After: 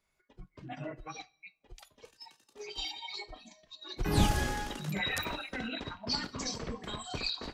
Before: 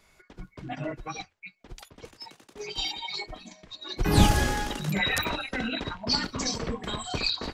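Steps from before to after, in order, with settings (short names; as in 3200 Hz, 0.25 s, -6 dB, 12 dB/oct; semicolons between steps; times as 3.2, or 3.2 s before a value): two-slope reverb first 0.77 s, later 2.8 s, from -18 dB, DRR 17 dB; spectral noise reduction 11 dB; gain -7 dB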